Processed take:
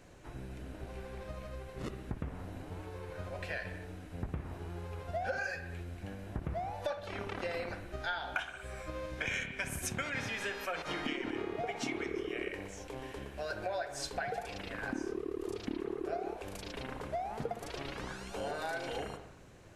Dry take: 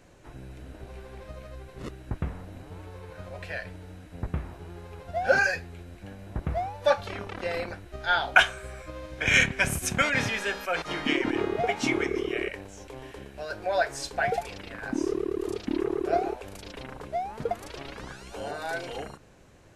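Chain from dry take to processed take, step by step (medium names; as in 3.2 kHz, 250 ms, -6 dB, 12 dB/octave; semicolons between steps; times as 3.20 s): compression 12:1, threshold -32 dBFS, peak gain reduction 20 dB; reverberation, pre-delay 57 ms, DRR 8.5 dB; trim -1.5 dB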